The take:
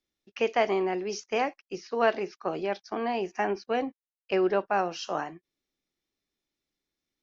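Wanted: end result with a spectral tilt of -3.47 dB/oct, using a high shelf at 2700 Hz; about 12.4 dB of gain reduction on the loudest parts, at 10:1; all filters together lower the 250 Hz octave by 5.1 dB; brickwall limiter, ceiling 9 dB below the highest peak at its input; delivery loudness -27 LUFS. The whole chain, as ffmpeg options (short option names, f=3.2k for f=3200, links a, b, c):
-af "equalizer=f=250:t=o:g=-8.5,highshelf=f=2.7k:g=-4,acompressor=threshold=-32dB:ratio=10,volume=13dB,alimiter=limit=-15dB:level=0:latency=1"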